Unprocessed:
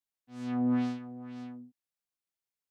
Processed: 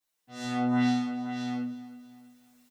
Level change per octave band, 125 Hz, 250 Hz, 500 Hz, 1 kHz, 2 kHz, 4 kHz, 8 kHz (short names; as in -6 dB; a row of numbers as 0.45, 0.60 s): +4.5 dB, +3.5 dB, +3.5 dB, +10.0 dB, +11.5 dB, +13.5 dB, n/a